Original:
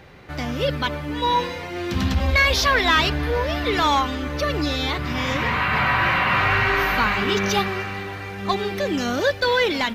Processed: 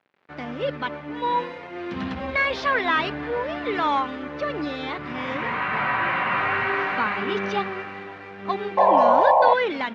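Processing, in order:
dead-zone distortion −40.5 dBFS
sound drawn into the spectrogram noise, 0:08.77–0:09.54, 500–1,100 Hz −14 dBFS
band-pass filter 200–2,300 Hz
level −2 dB

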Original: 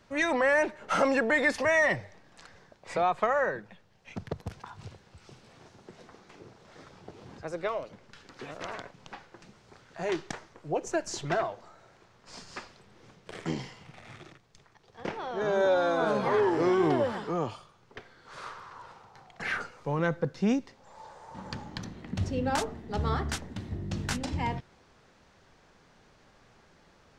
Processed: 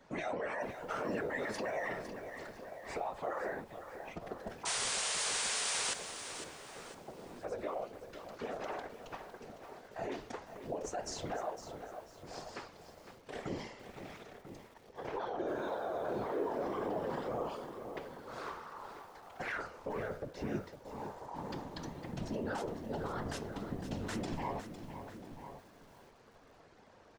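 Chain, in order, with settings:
parametric band 560 Hz +8 dB 1.7 octaves
comb filter 4.4 ms, depth 75%
brickwall limiter −24 dBFS, peak gain reduction 17 dB
random phases in short frames
flanger 1.9 Hz, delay 8.3 ms, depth 5.5 ms, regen +79%
sound drawn into the spectrogram noise, 0:04.65–0:05.94, 390–9,800 Hz −33 dBFS
slap from a distant wall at 170 metres, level −11 dB
feedback echo at a low word length 506 ms, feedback 35%, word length 9 bits, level −10 dB
level −2.5 dB

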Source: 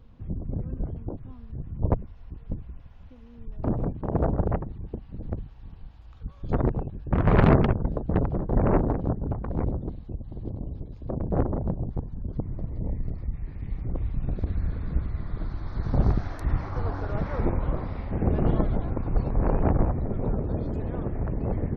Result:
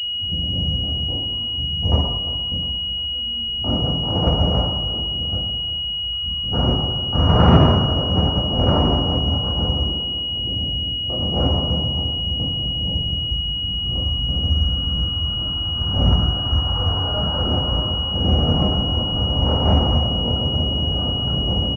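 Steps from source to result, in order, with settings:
0:09.76–0:10.26: Butterworth high-pass 190 Hz
repeating echo 351 ms, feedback 46%, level −14.5 dB
convolution reverb RT60 1.1 s, pre-delay 3 ms, DRR −9 dB
switching amplifier with a slow clock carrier 2,900 Hz
level −11.5 dB

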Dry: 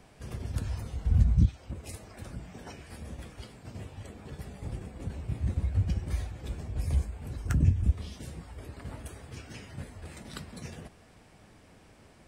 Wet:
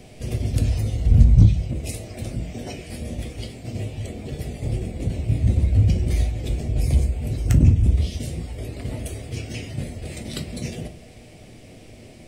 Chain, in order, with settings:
flat-topped bell 1,200 Hz −12.5 dB 1.2 octaves
in parallel at −7 dB: hard clipping −28 dBFS, distortion −5 dB
on the sum: convolution reverb RT60 0.45 s, pre-delay 8 ms, DRR 7 dB
level +8 dB

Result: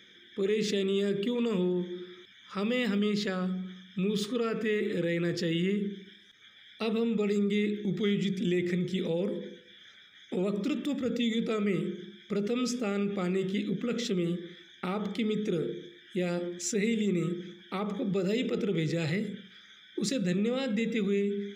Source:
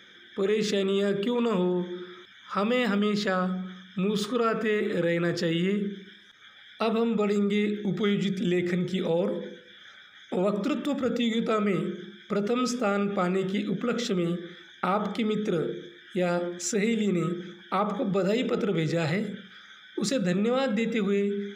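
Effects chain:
flat-topped bell 940 Hz −8.5 dB
level −2.5 dB

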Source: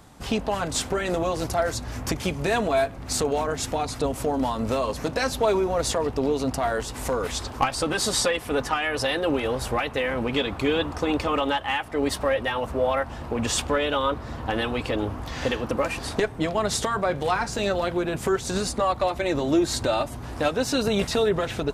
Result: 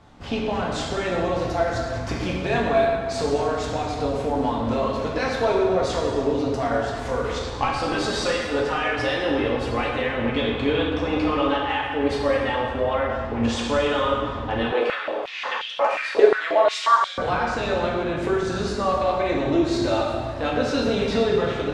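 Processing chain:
low-pass filter 4,200 Hz 12 dB per octave
dense smooth reverb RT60 1.7 s, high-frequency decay 0.8×, DRR −3 dB
0:14.72–0:17.18: high-pass on a step sequencer 5.6 Hz 440–3,300 Hz
level −3 dB

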